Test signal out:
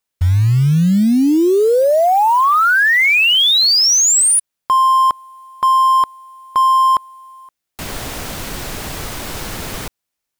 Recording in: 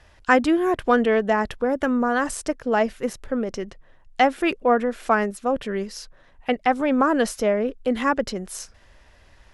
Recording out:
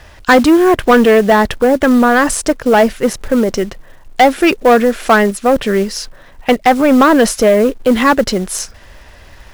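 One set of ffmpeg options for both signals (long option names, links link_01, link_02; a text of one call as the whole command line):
ffmpeg -i in.wav -filter_complex "[0:a]asplit=2[link_01][link_02];[link_02]acontrast=58,volume=-2dB[link_03];[link_01][link_03]amix=inputs=2:normalize=0,acrusher=bits=5:mode=log:mix=0:aa=0.000001,acontrast=68,volume=-1dB" out.wav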